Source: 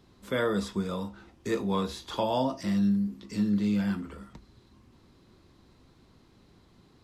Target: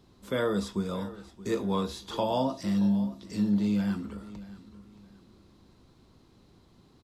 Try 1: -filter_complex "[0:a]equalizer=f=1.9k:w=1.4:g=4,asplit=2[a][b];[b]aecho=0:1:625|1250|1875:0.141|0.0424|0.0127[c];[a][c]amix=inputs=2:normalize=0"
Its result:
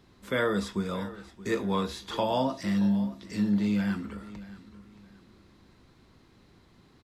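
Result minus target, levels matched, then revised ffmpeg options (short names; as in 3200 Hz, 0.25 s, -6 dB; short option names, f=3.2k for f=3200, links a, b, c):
2000 Hz band +6.0 dB
-filter_complex "[0:a]equalizer=f=1.9k:w=1.4:g=-4,asplit=2[a][b];[b]aecho=0:1:625|1250|1875:0.141|0.0424|0.0127[c];[a][c]amix=inputs=2:normalize=0"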